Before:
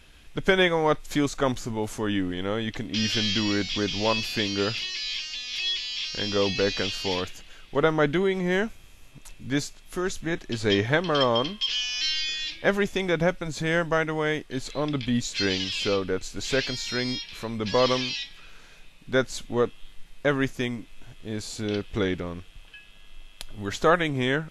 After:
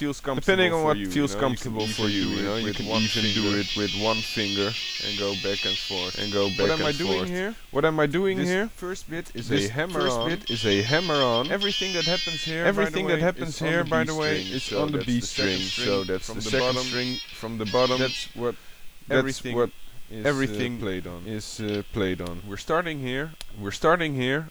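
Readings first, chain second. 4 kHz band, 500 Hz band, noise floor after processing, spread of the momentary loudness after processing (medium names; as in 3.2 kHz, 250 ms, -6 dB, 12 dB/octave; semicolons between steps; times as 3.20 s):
+1.5 dB, +1.5 dB, -41 dBFS, 9 LU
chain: added noise white -59 dBFS; reverse echo 1144 ms -4 dB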